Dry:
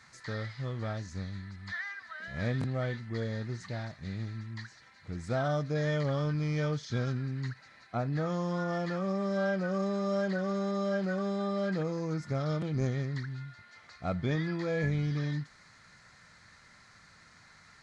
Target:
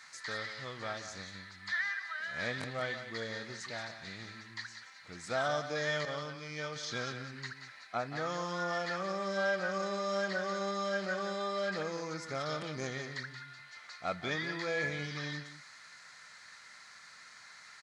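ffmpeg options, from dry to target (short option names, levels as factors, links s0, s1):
-filter_complex "[0:a]asettb=1/sr,asplit=3[s0][s1][s2];[s0]atrim=end=6.054[s3];[s1]atrim=start=6.05:end=6.76,asetpts=PTS-STARTPTS,afade=t=in:d=0.004:c=qsin,afade=t=out:st=0.706:d=0.004:c=qsin,agate=range=0.0224:threshold=0.0562:ratio=3:detection=peak[s4];[s2]atrim=start=6.756[s5];[s3][s4]acrossfade=d=0.004:c1=hsin:c2=qsin[s6];[s6][s5]acrossfade=d=0.004:c1=qsin:c2=hsin,highpass=f=1400:p=1,aecho=1:1:178:0.299,volume=2"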